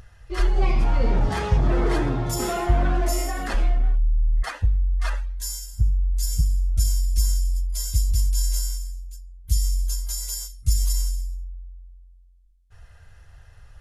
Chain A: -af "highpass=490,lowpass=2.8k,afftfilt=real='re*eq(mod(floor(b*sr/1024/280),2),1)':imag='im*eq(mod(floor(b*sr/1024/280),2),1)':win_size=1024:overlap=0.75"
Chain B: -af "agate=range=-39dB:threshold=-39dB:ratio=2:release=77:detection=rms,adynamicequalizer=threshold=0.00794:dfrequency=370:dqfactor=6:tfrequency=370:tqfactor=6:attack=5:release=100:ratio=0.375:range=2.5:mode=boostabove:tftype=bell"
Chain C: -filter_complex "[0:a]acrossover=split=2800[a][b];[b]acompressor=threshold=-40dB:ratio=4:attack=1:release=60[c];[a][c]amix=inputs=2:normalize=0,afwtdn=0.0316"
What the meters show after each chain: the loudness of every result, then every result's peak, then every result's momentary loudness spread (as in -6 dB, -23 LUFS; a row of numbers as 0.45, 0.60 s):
-38.5, -24.5, -25.5 LUFS; -20.5, -7.5, -8.0 dBFS; 18, 9, 13 LU